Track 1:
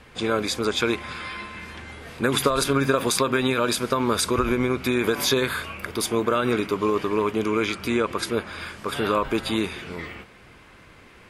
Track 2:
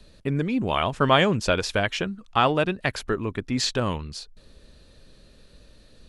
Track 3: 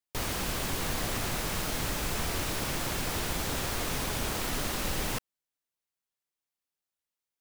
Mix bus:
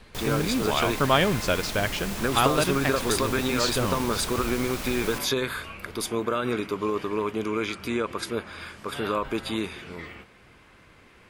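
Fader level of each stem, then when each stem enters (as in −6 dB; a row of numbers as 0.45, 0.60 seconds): −4.5, −2.5, −2.0 decibels; 0.00, 0.00, 0.00 seconds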